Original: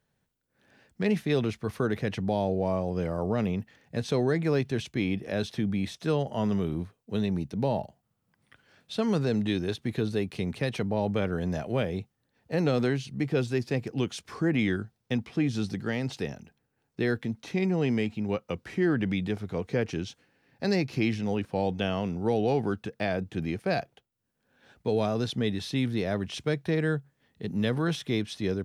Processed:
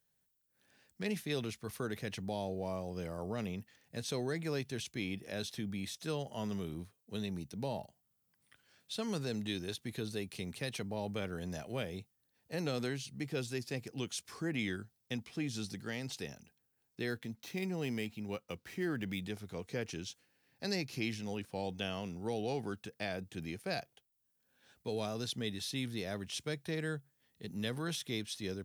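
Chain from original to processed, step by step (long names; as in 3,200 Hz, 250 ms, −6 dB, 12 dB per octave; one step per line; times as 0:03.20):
0:17.10–0:19.21: running median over 5 samples
first-order pre-emphasis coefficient 0.8
level +2.5 dB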